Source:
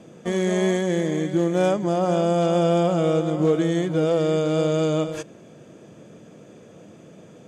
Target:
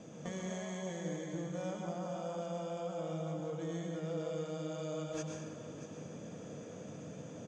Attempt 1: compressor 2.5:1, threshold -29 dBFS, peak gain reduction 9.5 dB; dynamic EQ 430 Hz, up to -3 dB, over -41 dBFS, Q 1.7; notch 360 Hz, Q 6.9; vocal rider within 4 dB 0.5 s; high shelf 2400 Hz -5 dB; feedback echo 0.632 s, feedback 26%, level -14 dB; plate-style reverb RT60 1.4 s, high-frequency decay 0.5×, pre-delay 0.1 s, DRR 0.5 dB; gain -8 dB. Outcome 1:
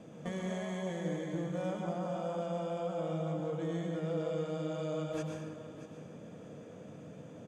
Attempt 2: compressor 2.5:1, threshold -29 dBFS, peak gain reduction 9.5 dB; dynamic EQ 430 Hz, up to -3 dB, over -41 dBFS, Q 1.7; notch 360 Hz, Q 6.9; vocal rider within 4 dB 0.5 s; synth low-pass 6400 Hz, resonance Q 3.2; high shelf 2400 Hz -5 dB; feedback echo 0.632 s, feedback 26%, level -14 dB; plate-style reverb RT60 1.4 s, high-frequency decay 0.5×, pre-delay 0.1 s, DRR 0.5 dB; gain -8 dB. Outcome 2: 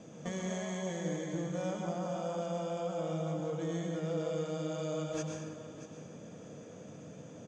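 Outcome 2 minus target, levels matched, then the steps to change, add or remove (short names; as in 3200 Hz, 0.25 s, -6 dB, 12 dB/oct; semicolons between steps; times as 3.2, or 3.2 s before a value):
compressor: peak gain reduction -3.5 dB
change: compressor 2.5:1, threshold -35 dBFS, peak gain reduction 13 dB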